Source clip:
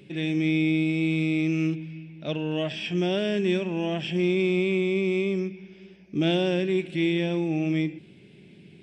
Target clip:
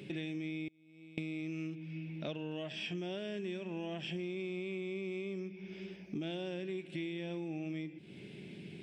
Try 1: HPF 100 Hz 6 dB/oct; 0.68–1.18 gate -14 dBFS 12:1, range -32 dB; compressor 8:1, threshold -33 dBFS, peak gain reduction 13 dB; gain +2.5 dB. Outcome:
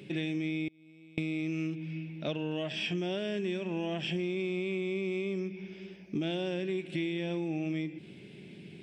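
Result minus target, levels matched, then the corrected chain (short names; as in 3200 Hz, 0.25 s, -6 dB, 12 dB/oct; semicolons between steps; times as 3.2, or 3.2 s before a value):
compressor: peak gain reduction -6.5 dB
HPF 100 Hz 6 dB/oct; 0.68–1.18 gate -14 dBFS 12:1, range -32 dB; compressor 8:1, threshold -40.5 dBFS, peak gain reduction 19.5 dB; gain +2.5 dB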